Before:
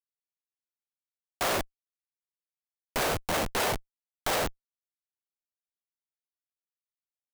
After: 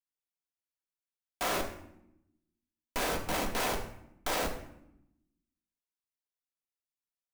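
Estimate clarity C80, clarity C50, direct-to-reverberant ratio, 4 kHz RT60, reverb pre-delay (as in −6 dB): 11.5 dB, 9.0 dB, 2.0 dB, 0.55 s, 3 ms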